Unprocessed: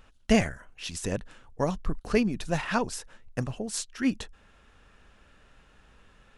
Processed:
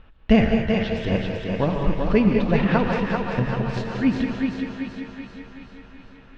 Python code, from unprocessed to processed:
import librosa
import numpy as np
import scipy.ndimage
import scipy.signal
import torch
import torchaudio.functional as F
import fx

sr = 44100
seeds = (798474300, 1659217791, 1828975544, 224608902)

y = fx.reverse_delay_fb(x, sr, ms=189, feedback_pct=75, wet_db=-9.5)
y = scipy.signal.sosfilt(scipy.signal.butter(4, 3700.0, 'lowpass', fs=sr, output='sos'), y)
y = fx.low_shelf(y, sr, hz=360.0, db=6.0)
y = fx.echo_thinned(y, sr, ms=389, feedback_pct=55, hz=200.0, wet_db=-4.5)
y = fx.rev_gated(y, sr, seeds[0], gate_ms=240, shape='rising', drr_db=4.5)
y = F.gain(torch.from_numpy(y), 2.0).numpy()